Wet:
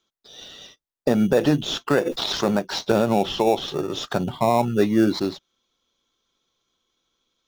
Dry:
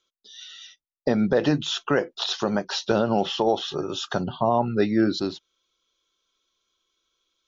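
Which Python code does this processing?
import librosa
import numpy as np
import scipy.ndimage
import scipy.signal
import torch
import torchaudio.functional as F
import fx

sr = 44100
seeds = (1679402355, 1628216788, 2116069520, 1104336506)

p1 = fx.sample_hold(x, sr, seeds[0], rate_hz=3100.0, jitter_pct=0)
p2 = x + (p1 * librosa.db_to_amplitude(-8.5))
y = fx.sustainer(p2, sr, db_per_s=45.0, at=(2.05, 2.58), fade=0.02)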